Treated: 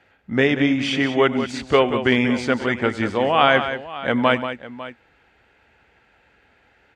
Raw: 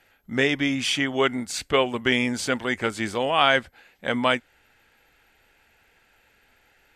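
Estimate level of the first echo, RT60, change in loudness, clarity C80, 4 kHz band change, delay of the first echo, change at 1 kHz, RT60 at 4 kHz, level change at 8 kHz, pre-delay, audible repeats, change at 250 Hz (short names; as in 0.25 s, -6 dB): -18.5 dB, none, +4.0 dB, none, 0.0 dB, 97 ms, +4.5 dB, none, n/a, none, 3, +6.0 dB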